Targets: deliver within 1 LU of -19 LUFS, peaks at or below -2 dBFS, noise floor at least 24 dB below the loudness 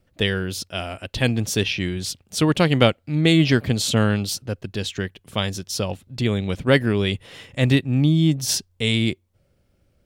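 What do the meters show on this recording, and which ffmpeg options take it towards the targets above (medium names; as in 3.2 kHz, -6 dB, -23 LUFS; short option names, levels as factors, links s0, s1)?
loudness -21.5 LUFS; peak level -1.5 dBFS; loudness target -19.0 LUFS
-> -af "volume=1.33,alimiter=limit=0.794:level=0:latency=1"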